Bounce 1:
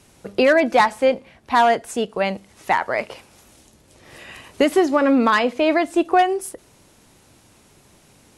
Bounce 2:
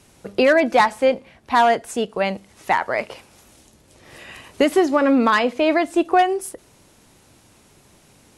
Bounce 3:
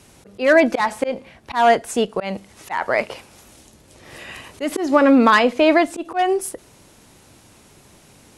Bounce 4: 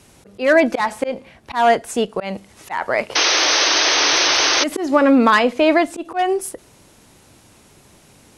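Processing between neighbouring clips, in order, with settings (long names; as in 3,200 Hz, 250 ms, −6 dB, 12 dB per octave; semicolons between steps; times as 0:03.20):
no processing that can be heard
harmonic generator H 8 −43 dB, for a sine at −4.5 dBFS; volume swells 163 ms; level +3.5 dB
sound drawn into the spectrogram noise, 0:03.15–0:04.64, 280–6,400 Hz −16 dBFS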